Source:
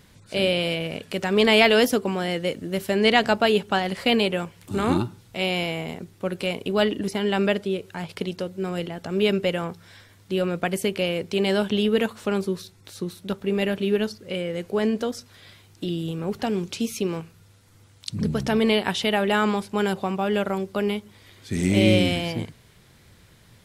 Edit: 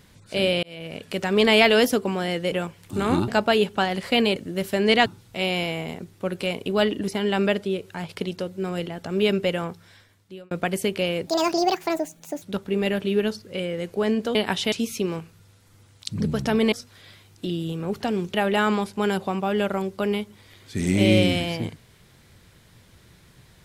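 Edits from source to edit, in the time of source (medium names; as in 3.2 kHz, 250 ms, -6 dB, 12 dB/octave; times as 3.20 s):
0.63–1.09 s: fade in
2.52–3.22 s: swap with 4.30–5.06 s
9.63–10.51 s: fade out
11.27–13.18 s: speed 166%
15.11–16.73 s: swap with 18.73–19.10 s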